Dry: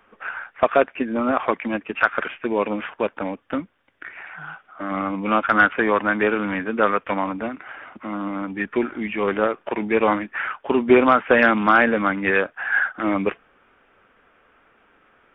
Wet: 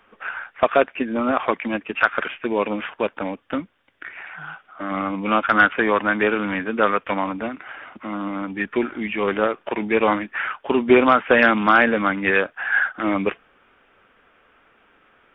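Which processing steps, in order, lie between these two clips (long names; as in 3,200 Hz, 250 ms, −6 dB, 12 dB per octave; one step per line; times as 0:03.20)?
parametric band 3,400 Hz +4 dB 1.1 octaves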